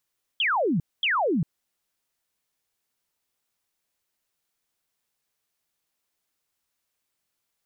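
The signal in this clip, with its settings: burst of laser zaps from 3.4 kHz, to 140 Hz, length 0.40 s sine, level -20.5 dB, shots 2, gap 0.23 s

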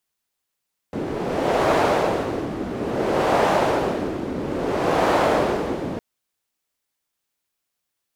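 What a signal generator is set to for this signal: wind-like swept noise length 5.06 s, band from 310 Hz, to 660 Hz, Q 1.4, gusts 3, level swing 9.5 dB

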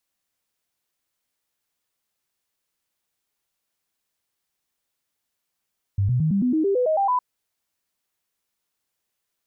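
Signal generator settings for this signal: stepped sine 98.9 Hz up, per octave 3, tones 11, 0.11 s, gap 0.00 s -17.5 dBFS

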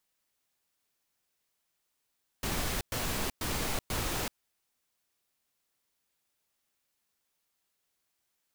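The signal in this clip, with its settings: noise bursts pink, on 0.38 s, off 0.11 s, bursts 4, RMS -32.5 dBFS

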